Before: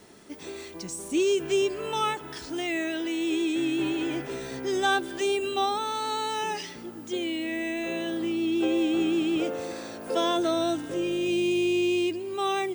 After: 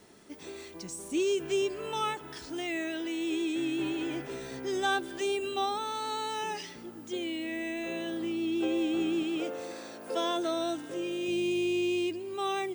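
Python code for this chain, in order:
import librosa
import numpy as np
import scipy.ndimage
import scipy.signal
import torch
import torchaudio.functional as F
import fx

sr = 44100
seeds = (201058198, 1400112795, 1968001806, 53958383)

y = fx.highpass(x, sr, hz=230.0, slope=6, at=(9.23, 11.28))
y = F.gain(torch.from_numpy(y), -4.5).numpy()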